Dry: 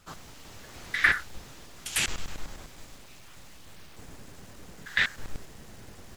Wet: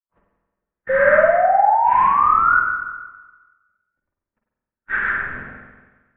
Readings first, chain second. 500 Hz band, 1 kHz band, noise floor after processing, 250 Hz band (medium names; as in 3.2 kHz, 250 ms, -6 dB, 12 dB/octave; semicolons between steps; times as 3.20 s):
+30.5 dB, +27.5 dB, under -85 dBFS, +6.5 dB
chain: phase randomisation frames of 200 ms; hum notches 50/100/150/200/250/300 Hz; gate -39 dBFS, range -55 dB; bass shelf 93 Hz +9.5 dB; level rider gain up to 16 dB; peak limiter -10 dBFS, peak gain reduction 8.5 dB; rotary cabinet horn 0.6 Hz, later 7 Hz, at 3.08 s; mistuned SSB -180 Hz 170–2200 Hz; painted sound rise, 0.89–2.60 s, 520–1500 Hz -18 dBFS; spring tank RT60 1.3 s, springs 45/50 ms, chirp 75 ms, DRR -0.5 dB